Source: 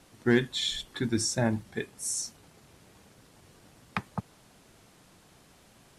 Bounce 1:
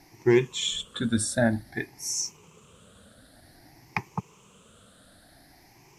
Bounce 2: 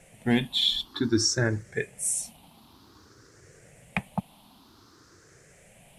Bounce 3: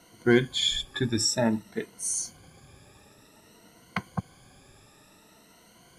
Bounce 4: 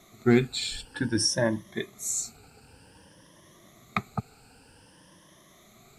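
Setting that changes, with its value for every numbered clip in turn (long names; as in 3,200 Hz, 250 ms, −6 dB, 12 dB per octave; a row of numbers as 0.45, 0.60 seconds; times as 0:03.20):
rippled gain that drifts along the octave scale, ripples per octave: 0.75, 0.51, 1.9, 1.2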